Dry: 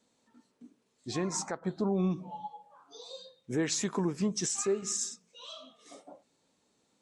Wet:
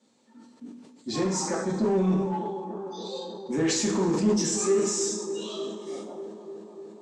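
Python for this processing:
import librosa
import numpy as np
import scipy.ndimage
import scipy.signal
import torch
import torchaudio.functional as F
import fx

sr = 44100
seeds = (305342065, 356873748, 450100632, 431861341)

p1 = scipy.signal.sosfilt(scipy.signal.butter(2, 200.0, 'highpass', fs=sr, output='sos'), x)
p2 = fx.low_shelf(p1, sr, hz=290.0, db=9.0)
p3 = p2 + fx.echo_wet_bandpass(p2, sr, ms=297, feedback_pct=78, hz=520.0, wet_db=-11, dry=0)
p4 = fx.rev_double_slope(p3, sr, seeds[0], early_s=0.52, late_s=2.0, knee_db=-16, drr_db=-4.0)
p5 = np.clip(10.0 ** (26.5 / 20.0) * p4, -1.0, 1.0) / 10.0 ** (26.5 / 20.0)
p6 = p4 + F.gain(torch.from_numpy(p5), -3.0).numpy()
p7 = scipy.signal.sosfilt(scipy.signal.butter(4, 9200.0, 'lowpass', fs=sr, output='sos'), p6)
p8 = fx.sustainer(p7, sr, db_per_s=47.0)
y = F.gain(torch.from_numpy(p8), -4.5).numpy()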